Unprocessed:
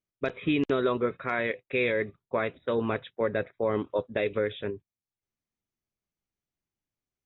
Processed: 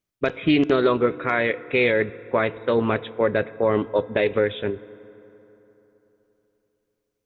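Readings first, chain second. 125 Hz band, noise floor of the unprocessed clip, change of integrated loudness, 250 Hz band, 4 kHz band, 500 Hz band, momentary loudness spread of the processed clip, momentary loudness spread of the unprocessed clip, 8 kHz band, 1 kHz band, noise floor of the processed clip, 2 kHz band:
+7.0 dB, below −85 dBFS, +7.0 dB, +7.5 dB, +8.0 dB, +7.0 dB, 6 LU, 6 LU, can't be measured, +7.0 dB, −78 dBFS, +7.0 dB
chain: feedback delay network reverb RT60 3.6 s, high-frequency decay 0.5×, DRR 17.5 dB
highs frequency-modulated by the lows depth 0.12 ms
level +7 dB

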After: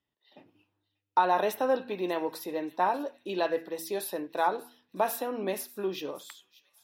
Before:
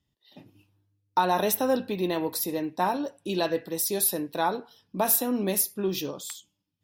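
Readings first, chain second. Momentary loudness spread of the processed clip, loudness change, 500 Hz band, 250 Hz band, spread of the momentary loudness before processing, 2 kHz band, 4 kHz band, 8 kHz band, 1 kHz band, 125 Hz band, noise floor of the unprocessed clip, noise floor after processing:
10 LU, −4.0 dB, −1.5 dB, −6.5 dB, 10 LU, −1.0 dB, −7.0 dB, −14.5 dB, 0.0 dB, −11.0 dB, −78 dBFS, −85 dBFS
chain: bass and treble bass −15 dB, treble −15 dB
hum removal 81.59 Hz, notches 4
on a send: delay with a high-pass on its return 586 ms, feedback 42%, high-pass 2,800 Hz, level −17 dB

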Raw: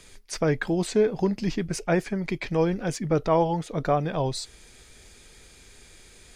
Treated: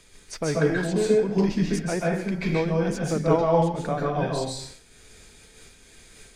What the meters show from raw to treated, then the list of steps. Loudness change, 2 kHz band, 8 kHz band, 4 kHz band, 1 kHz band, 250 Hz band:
+1.5 dB, +1.5 dB, +0.5 dB, +0.5 dB, +0.5 dB, +2.0 dB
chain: dense smooth reverb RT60 0.58 s, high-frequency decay 0.95×, pre-delay 120 ms, DRR −4 dB
amplitude modulation by smooth noise, depth 65%

